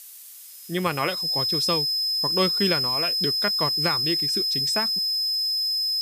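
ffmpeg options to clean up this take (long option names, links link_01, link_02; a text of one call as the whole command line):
ffmpeg -i in.wav -af "bandreject=frequency=5100:width=30,afftdn=noise_reduction=28:noise_floor=-43" out.wav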